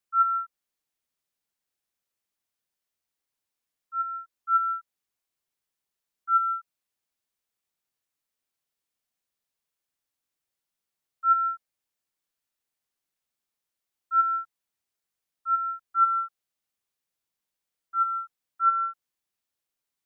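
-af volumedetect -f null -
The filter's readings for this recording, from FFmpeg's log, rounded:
mean_volume: -32.6 dB
max_volume: -12.8 dB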